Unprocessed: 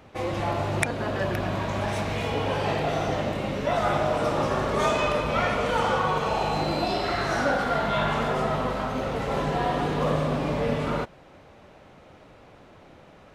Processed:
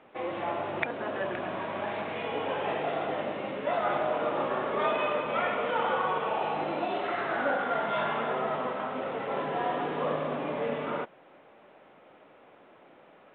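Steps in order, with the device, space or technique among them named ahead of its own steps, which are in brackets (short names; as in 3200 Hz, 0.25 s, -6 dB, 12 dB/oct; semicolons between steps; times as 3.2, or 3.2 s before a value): telephone (BPF 280–3300 Hz; gain -3.5 dB; µ-law 64 kbps 8000 Hz)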